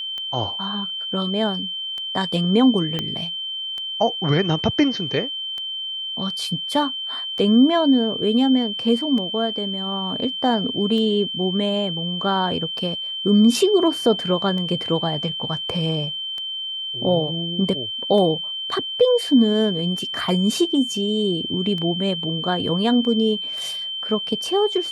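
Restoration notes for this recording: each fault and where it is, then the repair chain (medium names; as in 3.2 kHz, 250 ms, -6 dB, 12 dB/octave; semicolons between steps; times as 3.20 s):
tick 33 1/3 rpm -19 dBFS
whine 3.1 kHz -26 dBFS
2.99 s: pop -11 dBFS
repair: de-click; band-stop 3.1 kHz, Q 30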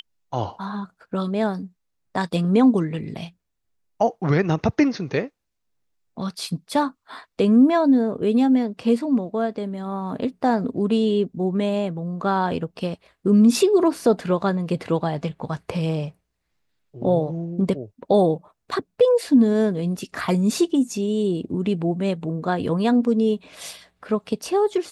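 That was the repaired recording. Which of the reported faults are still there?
2.99 s: pop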